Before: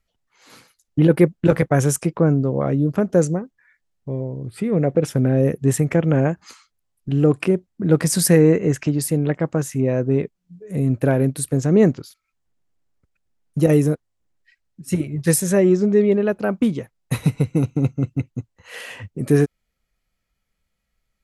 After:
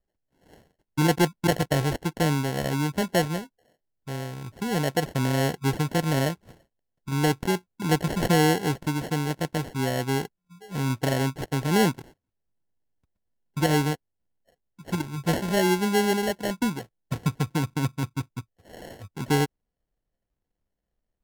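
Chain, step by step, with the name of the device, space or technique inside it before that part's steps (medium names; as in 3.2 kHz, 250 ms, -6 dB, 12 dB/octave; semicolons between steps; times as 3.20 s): crushed at another speed (playback speed 1.25×; sample-and-hold 29×; playback speed 0.8×); trim -7 dB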